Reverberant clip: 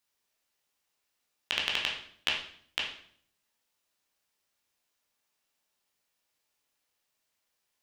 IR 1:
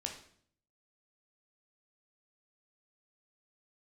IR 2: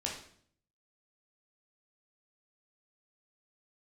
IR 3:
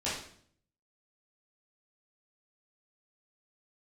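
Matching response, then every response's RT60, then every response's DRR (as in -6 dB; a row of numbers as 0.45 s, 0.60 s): 2; 0.60 s, 0.60 s, 0.60 s; 1.5 dB, -2.5 dB, -10.5 dB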